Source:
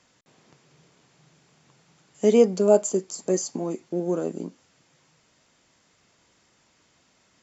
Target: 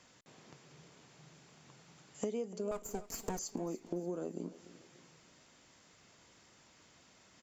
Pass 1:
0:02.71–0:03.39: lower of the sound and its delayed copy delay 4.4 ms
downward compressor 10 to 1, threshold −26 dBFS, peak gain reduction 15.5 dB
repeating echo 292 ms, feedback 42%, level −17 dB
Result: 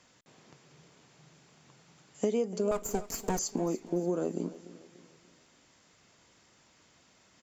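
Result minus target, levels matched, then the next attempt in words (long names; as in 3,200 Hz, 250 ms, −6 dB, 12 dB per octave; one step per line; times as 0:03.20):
downward compressor: peak gain reduction −8.5 dB
0:02.71–0:03.39: lower of the sound and its delayed copy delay 4.4 ms
downward compressor 10 to 1, threshold −35.5 dBFS, peak gain reduction 24 dB
repeating echo 292 ms, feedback 42%, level −17 dB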